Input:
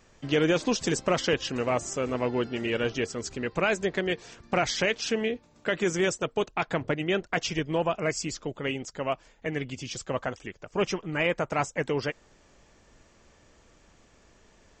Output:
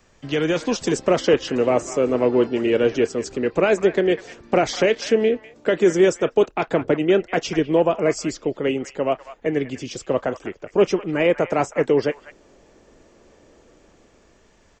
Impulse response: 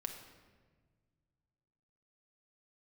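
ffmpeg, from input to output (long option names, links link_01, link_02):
-filter_complex "[0:a]acrossover=split=300|520|2800[link_01][link_02][link_03][link_04];[link_02]dynaudnorm=framelen=210:gausssize=9:maxgain=14dB[link_05];[link_03]aecho=1:1:29.15|198.3:0.282|0.355[link_06];[link_01][link_05][link_06][link_04]amix=inputs=4:normalize=0,volume=1.5dB"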